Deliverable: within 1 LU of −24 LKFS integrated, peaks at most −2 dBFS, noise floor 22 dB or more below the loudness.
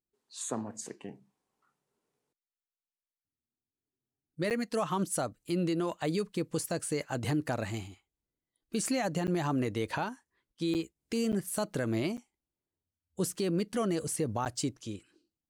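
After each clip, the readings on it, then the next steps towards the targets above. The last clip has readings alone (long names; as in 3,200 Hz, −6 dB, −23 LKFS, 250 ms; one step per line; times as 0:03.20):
number of dropouts 6; longest dropout 8.5 ms; integrated loudness −33.0 LKFS; sample peak −21.5 dBFS; target loudness −24.0 LKFS
→ repair the gap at 0:04.50/0:09.27/0:10.74/0:11.32/0:12.17/0:14.45, 8.5 ms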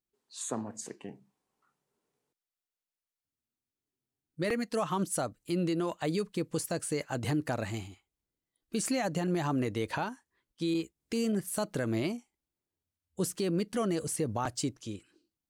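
number of dropouts 0; integrated loudness −33.0 LKFS; sample peak −21.5 dBFS; target loudness −24.0 LKFS
→ level +9 dB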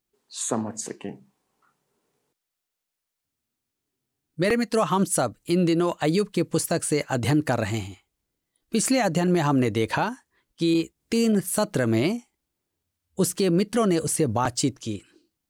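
integrated loudness −24.5 LKFS; sample peak −12.5 dBFS; background noise floor −84 dBFS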